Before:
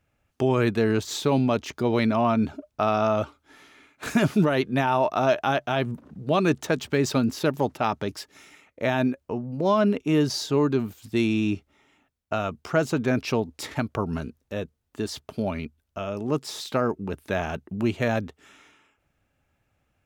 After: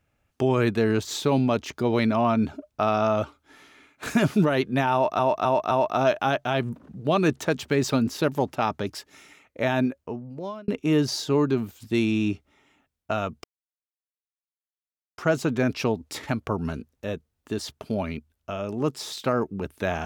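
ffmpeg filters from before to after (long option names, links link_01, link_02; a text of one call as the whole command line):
ffmpeg -i in.wav -filter_complex "[0:a]asplit=6[link_01][link_02][link_03][link_04][link_05][link_06];[link_01]atrim=end=5.192[link_07];[link_02]atrim=start=4.928:end=5.192[link_08];[link_03]atrim=start=4.928:end=5.192[link_09];[link_04]atrim=start=4.928:end=9.9,asetpts=PTS-STARTPTS,afade=type=out:start_time=4.152:duration=0.82[link_10];[link_05]atrim=start=9.9:end=12.66,asetpts=PTS-STARTPTS,afade=type=in:duration=0.004:curve=hsin,afade=type=out:start_time=2.756:duration=0.004:curve=hsin,apad=pad_dur=1.74[link_11];[link_06]atrim=start=12.66,asetpts=PTS-STARTPTS,afade=type=in:duration=0.004:curve=hsin[link_12];[link_07][link_08]acrossfade=duration=0.004:curve1=hsin:curve2=hsin[link_13];[link_13][link_09]acrossfade=duration=0.004:curve1=hsin:curve2=hsin[link_14];[link_10][link_11][link_12]concat=n=3:v=0:a=1[link_15];[link_14][link_15]acrossfade=duration=0.004:curve1=hsin:curve2=hsin" out.wav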